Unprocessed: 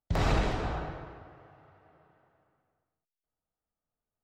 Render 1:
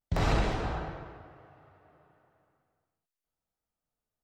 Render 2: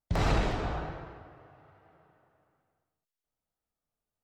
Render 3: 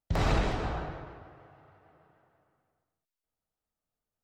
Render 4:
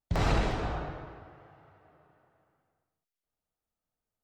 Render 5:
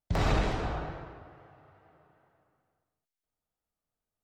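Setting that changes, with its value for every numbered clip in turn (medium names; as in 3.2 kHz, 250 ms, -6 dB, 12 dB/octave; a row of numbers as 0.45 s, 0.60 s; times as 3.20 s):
vibrato, rate: 0.37 Hz, 1.2 Hz, 6.5 Hz, 0.83 Hz, 2.3 Hz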